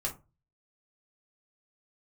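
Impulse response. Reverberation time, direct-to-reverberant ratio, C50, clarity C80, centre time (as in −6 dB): 0.30 s, −3.0 dB, 12.5 dB, 20.5 dB, 14 ms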